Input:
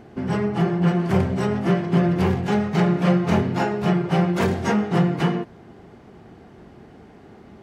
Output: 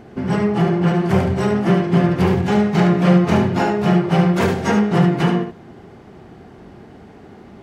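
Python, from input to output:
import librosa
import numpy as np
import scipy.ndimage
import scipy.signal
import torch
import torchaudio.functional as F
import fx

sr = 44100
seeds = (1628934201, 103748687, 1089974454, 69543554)

y = x + 10.0 ** (-6.5 / 20.0) * np.pad(x, (int(72 * sr / 1000.0), 0))[:len(x)]
y = y * librosa.db_to_amplitude(3.5)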